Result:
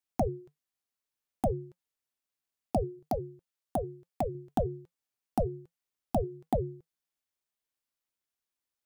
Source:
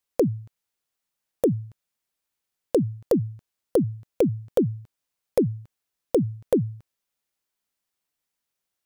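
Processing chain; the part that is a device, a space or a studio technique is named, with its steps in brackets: alien voice (ring modulator 250 Hz; flange 1.2 Hz, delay 2.6 ms, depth 1 ms, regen -83%); 2.99–4.35 s: bass shelf 410 Hz -6 dB

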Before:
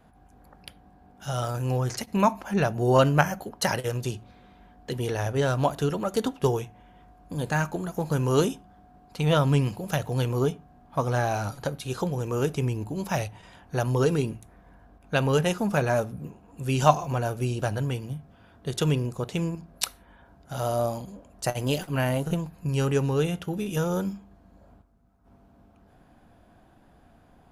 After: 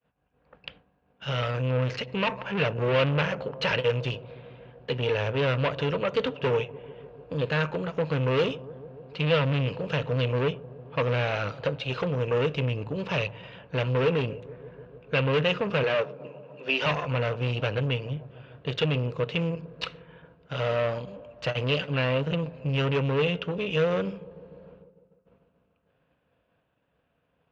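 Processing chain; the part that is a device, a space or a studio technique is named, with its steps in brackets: 15.83–16.86 s: elliptic band-pass 300–6000 Hz; analogue delay pedal into a guitar amplifier (bucket-brigade echo 148 ms, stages 1024, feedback 81%, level -23.5 dB; valve stage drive 28 dB, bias 0.7; cabinet simulation 88–3800 Hz, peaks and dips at 93 Hz -7 dB, 220 Hz -10 dB, 340 Hz -10 dB, 490 Hz +8 dB, 760 Hz -10 dB, 2.7 kHz +9 dB); expander -54 dBFS; trim +7.5 dB

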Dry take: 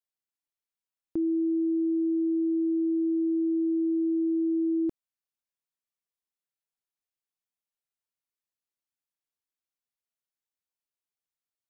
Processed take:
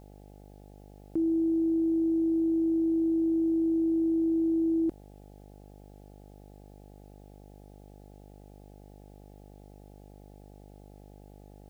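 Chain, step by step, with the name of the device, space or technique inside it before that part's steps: video cassette with head-switching buzz (mains buzz 50 Hz, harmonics 17, -51 dBFS -4 dB/octave; white noise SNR 40 dB)

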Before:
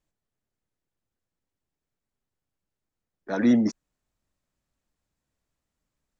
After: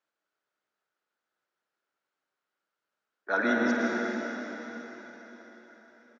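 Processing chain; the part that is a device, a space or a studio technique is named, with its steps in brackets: station announcement (band-pass 460–4700 Hz; peaking EQ 1.4 kHz +11.5 dB 0.35 oct; loudspeakers at several distances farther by 18 m -11 dB, 55 m -10 dB; reverberation RT60 4.6 s, pre-delay 95 ms, DRR -2 dB)

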